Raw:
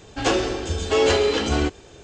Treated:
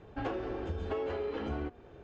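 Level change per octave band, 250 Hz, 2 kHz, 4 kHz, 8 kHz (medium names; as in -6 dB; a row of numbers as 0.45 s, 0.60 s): -13.0 dB, -18.5 dB, -27.0 dB, under -35 dB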